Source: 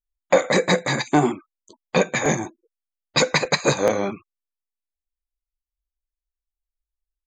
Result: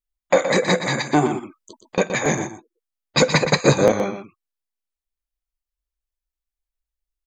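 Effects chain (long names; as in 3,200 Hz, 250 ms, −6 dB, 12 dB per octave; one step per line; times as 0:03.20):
0:01.27–0:01.98: compressor whose output falls as the input rises −27 dBFS, ratio −0.5
0:03.18–0:03.92: low-shelf EQ 460 Hz +8 dB
single-tap delay 121 ms −9.5 dB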